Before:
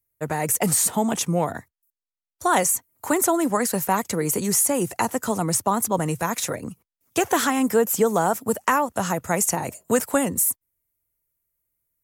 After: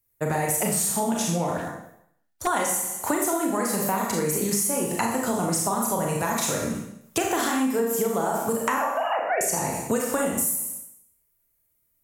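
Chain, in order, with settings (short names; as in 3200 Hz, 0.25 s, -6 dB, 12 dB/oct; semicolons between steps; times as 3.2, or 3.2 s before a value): 8.78–9.41 sine-wave speech; Schroeder reverb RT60 0.7 s, combs from 27 ms, DRR -1.5 dB; 1.57–2.47 hard clip -26 dBFS, distortion -29 dB; compressor 6:1, threshold -25 dBFS, peak gain reduction 14 dB; gain +3 dB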